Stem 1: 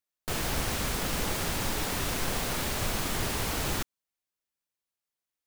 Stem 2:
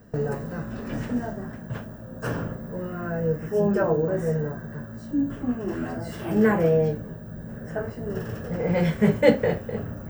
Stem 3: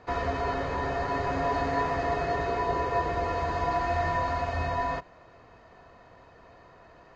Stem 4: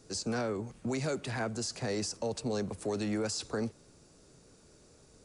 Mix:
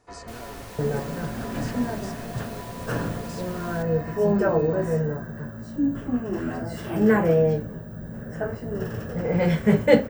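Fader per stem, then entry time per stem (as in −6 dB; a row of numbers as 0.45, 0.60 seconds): −13.0, +1.0, −12.5, −10.0 decibels; 0.00, 0.65, 0.00, 0.00 seconds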